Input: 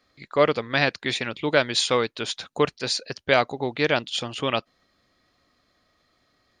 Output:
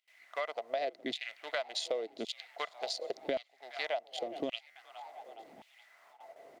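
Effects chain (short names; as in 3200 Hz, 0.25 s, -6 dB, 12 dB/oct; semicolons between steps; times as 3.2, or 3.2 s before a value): Wiener smoothing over 25 samples; band shelf 1400 Hz -8 dB; added noise brown -45 dBFS; gate with hold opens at -39 dBFS; low shelf 110 Hz -9 dB; small resonant body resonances 670/2000 Hz, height 15 dB, ringing for 30 ms; on a send: frequency-shifting echo 0.416 s, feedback 55%, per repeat +50 Hz, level -23.5 dB; on the sum: LFO high-pass saw down 0.89 Hz 230–3100 Hz; compressor 6:1, threshold -28 dBFS, peak gain reduction 20 dB; stuck buffer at 4.7, samples 512, times 4; gain -5 dB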